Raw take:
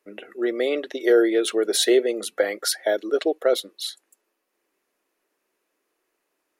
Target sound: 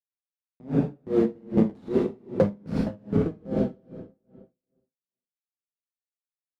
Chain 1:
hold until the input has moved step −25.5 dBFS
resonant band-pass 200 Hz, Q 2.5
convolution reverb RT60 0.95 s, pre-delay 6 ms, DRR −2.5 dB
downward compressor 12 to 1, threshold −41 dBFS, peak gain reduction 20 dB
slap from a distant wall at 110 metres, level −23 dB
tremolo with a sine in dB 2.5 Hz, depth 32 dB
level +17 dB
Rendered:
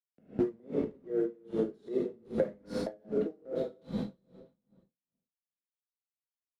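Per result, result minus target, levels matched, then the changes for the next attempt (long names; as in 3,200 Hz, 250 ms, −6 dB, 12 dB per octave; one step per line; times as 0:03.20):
hold until the input has moved: distortion −14 dB; downward compressor: peak gain reduction +9 dB
change: hold until the input has moved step −14 dBFS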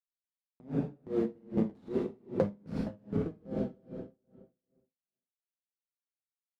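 downward compressor: peak gain reduction +8.5 dB
change: downward compressor 12 to 1, threshold −31.5 dBFS, peak gain reduction 11 dB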